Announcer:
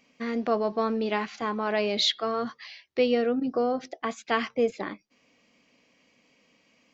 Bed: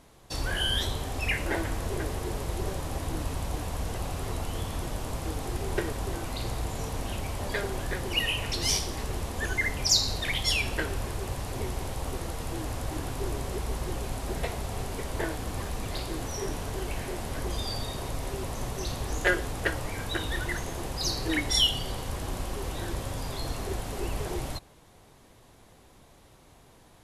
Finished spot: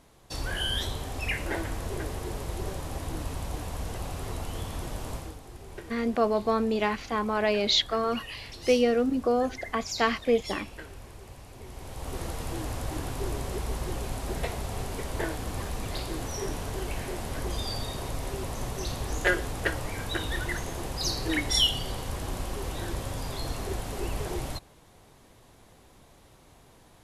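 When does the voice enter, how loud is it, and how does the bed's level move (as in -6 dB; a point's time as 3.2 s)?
5.70 s, +1.0 dB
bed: 5.15 s -2 dB
5.41 s -13 dB
11.6 s -13 dB
12.21 s 0 dB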